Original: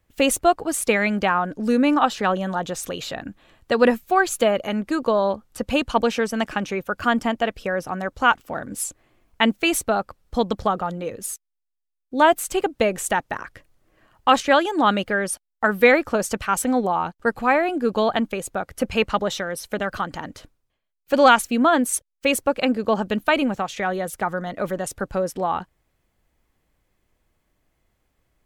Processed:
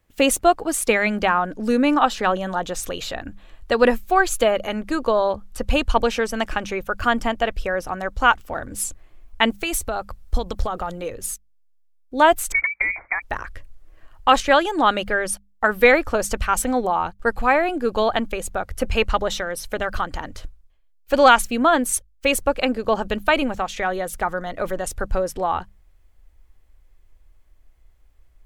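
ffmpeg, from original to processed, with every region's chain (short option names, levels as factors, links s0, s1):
-filter_complex "[0:a]asettb=1/sr,asplit=3[s0][s1][s2];[s0]atrim=end=9.504[s3];[s1]atrim=start=9.5:end=11.09,asetpts=PTS-STARTPTS,afade=t=in:d=0.004:c=qsin,afade=t=out:st=1.586:d=0.004:c=qsin,highshelf=f=5800:g=6,acompressor=threshold=0.0794:ratio=5:attack=3.2:release=140:knee=1:detection=peak[s4];[s2]atrim=start=11.086[s5];[s3][s4]acrossfade=d=0.004:c1=hsin:c2=qsin[s6];[s6][s5]acrossfade=d=0.004:c1=qsin:c2=hsin,asettb=1/sr,asplit=3[s7][s8][s9];[s7]atrim=end=12.524[s10];[s8]atrim=start=12.52:end=13.22,asetpts=PTS-STARTPTS,afade=t=in:d=0.004:c=qsin,afade=t=out:st=0.696:d=0.004:c=qsin,acompressor=threshold=0.0794:ratio=6:attack=3.2:release=140:knee=1:detection=peak,highpass=f=280:t=q:w=2.8,lowpass=f=2200:t=q:w=0.5098,lowpass=f=2200:t=q:w=0.6013,lowpass=f=2200:t=q:w=0.9,lowpass=f=2200:t=q:w=2.563,afreqshift=-2600[s11];[s9]atrim=start=13.216[s12];[s10][s11]acrossfade=d=0.004:c1=hsin:c2=qsin[s13];[s13][s12]acrossfade=d=0.004:c1=qsin:c2=hsin,bandreject=f=50:t=h:w=6,bandreject=f=100:t=h:w=6,bandreject=f=150:t=h:w=6,bandreject=f=200:t=h:w=6,asubboost=boost=11.5:cutoff=51,volume=1.19"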